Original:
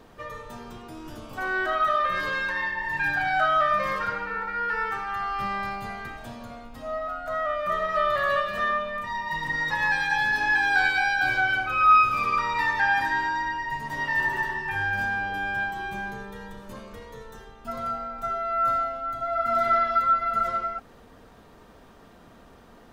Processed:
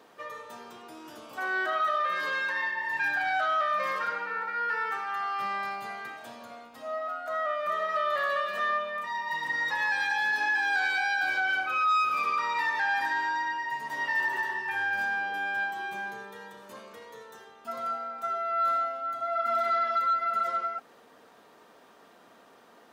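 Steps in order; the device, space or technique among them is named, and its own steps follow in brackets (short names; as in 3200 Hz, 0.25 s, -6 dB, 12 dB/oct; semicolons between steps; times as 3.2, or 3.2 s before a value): soft clipper into limiter (soft clip -14.5 dBFS, distortion -19 dB; limiter -19 dBFS, peak gain reduction 4 dB); Bessel high-pass 410 Hz, order 2; gain -1.5 dB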